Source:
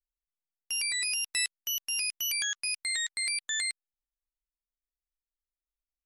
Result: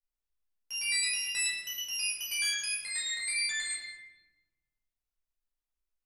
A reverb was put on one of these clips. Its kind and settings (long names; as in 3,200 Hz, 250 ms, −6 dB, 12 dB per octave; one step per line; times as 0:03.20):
rectangular room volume 630 cubic metres, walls mixed, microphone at 4.9 metres
level −10 dB